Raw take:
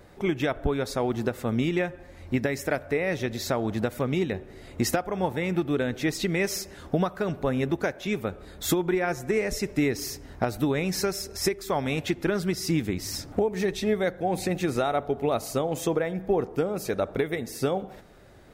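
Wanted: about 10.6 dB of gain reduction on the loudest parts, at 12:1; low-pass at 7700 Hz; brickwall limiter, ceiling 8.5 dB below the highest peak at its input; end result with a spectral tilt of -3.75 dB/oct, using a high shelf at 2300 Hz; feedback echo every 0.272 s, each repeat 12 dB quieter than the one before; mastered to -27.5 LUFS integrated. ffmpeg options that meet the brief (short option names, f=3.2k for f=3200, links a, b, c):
-af "lowpass=7.7k,highshelf=f=2.3k:g=8.5,acompressor=threshold=-30dB:ratio=12,alimiter=level_in=3.5dB:limit=-24dB:level=0:latency=1,volume=-3.5dB,aecho=1:1:272|544|816:0.251|0.0628|0.0157,volume=10dB"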